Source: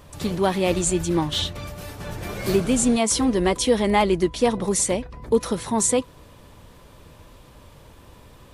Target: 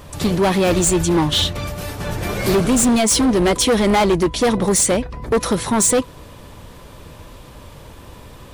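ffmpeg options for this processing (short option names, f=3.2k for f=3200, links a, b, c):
-af "acontrast=86,volume=13dB,asoftclip=hard,volume=-13dB,volume=1dB"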